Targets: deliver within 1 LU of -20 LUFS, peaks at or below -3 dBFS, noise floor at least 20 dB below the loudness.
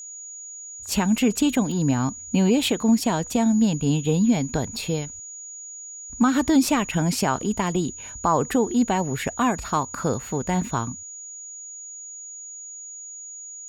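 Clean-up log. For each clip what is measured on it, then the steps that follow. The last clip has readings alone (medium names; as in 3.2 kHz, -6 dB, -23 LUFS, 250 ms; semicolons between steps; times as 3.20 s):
steady tone 6.8 kHz; tone level -36 dBFS; loudness -23.0 LUFS; peak level -10.0 dBFS; loudness target -20.0 LUFS
-> band-stop 6.8 kHz, Q 30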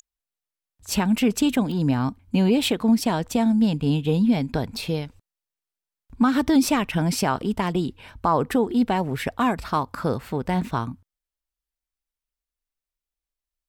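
steady tone not found; loudness -23.0 LUFS; peak level -10.5 dBFS; loudness target -20.0 LUFS
-> trim +3 dB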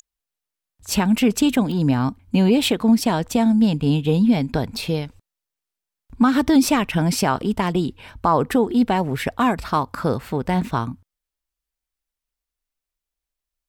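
loudness -20.0 LUFS; peak level -7.5 dBFS; noise floor -86 dBFS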